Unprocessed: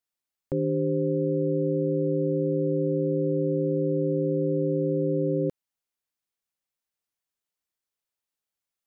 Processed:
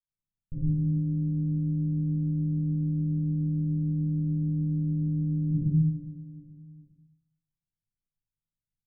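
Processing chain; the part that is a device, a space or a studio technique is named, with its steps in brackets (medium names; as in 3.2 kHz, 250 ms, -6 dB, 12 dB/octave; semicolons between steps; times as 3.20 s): spectral noise reduction 7 dB; feedback delay 415 ms, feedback 42%, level -22 dB; simulated room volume 260 m³, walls furnished, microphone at 5.8 m; club heard from the street (peak limiter -19 dBFS, peak gain reduction 14 dB; low-pass 190 Hz 24 dB/octave; reverberation RT60 0.60 s, pre-delay 53 ms, DRR -6 dB); trim -2 dB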